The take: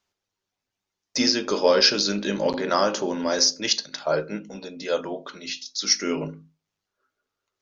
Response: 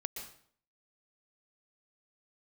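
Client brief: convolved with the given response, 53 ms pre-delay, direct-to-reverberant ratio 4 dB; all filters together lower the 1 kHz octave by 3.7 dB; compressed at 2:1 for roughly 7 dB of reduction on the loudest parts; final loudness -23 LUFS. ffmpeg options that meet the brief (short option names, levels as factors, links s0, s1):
-filter_complex "[0:a]equalizer=f=1000:t=o:g=-5,acompressor=threshold=0.0447:ratio=2,asplit=2[s0][s1];[1:a]atrim=start_sample=2205,adelay=53[s2];[s1][s2]afir=irnorm=-1:irlink=0,volume=0.668[s3];[s0][s3]amix=inputs=2:normalize=0,volume=1.68"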